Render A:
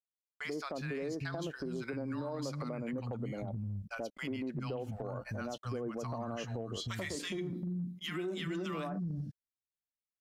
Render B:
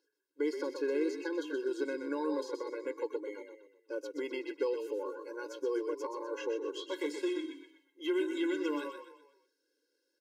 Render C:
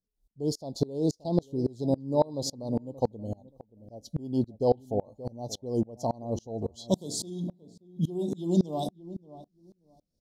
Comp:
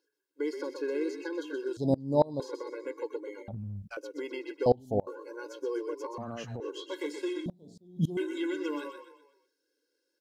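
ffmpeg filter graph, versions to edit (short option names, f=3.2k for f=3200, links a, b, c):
-filter_complex "[2:a]asplit=3[a][b][c];[0:a]asplit=2[d][e];[1:a]asplit=6[f][g][h][i][j][k];[f]atrim=end=1.772[l];[a]atrim=start=1.768:end=2.402[m];[g]atrim=start=2.398:end=3.482[n];[d]atrim=start=3.478:end=3.972[o];[h]atrim=start=3.968:end=4.662[p];[b]atrim=start=4.658:end=5.072[q];[i]atrim=start=5.068:end=6.182[r];[e]atrim=start=6.178:end=6.602[s];[j]atrim=start=6.598:end=7.462[t];[c]atrim=start=7.458:end=8.172[u];[k]atrim=start=8.168[v];[l][m]acrossfade=d=0.004:c1=hsin:c2=hsin[w];[w][n]acrossfade=d=0.004:c1=hsin:c2=hsin[x];[x][o]acrossfade=d=0.004:c1=hsin:c2=hsin[y];[y][p]acrossfade=d=0.004:c1=hsin:c2=hsin[z];[z][q]acrossfade=d=0.004:c1=hsin:c2=hsin[aa];[aa][r]acrossfade=d=0.004:c1=hsin:c2=hsin[ab];[ab][s]acrossfade=d=0.004:c1=hsin:c2=hsin[ac];[ac][t]acrossfade=d=0.004:c1=hsin:c2=hsin[ad];[ad][u]acrossfade=d=0.004:c1=hsin:c2=hsin[ae];[ae][v]acrossfade=d=0.004:c1=hsin:c2=hsin"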